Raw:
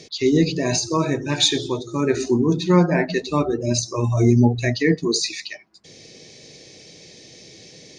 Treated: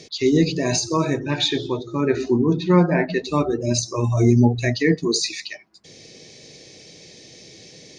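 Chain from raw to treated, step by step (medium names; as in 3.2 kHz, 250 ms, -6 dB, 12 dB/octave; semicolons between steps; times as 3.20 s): 1.19–3.24 s: low-pass 3.6 kHz 12 dB/octave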